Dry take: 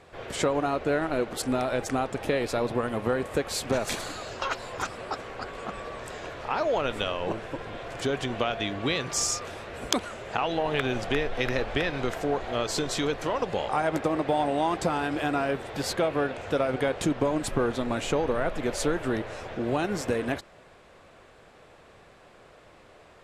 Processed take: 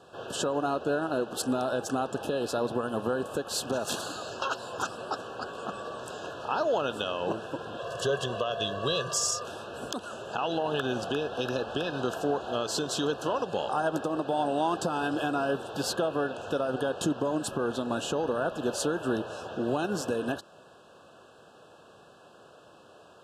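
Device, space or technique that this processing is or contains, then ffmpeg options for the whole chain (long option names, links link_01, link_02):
PA system with an anti-feedback notch: -filter_complex "[0:a]asettb=1/sr,asplit=3[link_01][link_02][link_03];[link_01]atrim=end=7.794[link_04];[link_02]atrim=start=7.79:end=9.43,asetpts=PTS-STARTPTS,afade=type=in:duration=0.004:curve=qsin,afade=type=out:start_time=1.636:duration=0.004:curve=qsin,aecho=1:1:1.8:0.75,atrim=end_sample=72324[link_05];[link_03]atrim=start=9.426[link_06];[link_04][link_05]acrossfade=duration=0.004:curve1=hsin:curve2=qsin[link_07];[link_07][link_06]acrossfade=duration=0.004:curve1=qsin:curve2=hsin,highpass=130,asuperstop=centerf=2100:order=20:qfactor=2.5,alimiter=limit=-17.5dB:level=0:latency=1:release=197"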